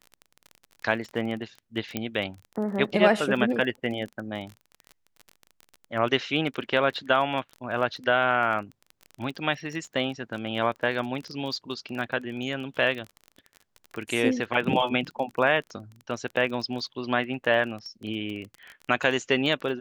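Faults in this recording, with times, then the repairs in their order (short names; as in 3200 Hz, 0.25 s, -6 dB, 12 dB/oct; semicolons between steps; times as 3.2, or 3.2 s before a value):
crackle 27/s -33 dBFS
1.97 pop -13 dBFS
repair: de-click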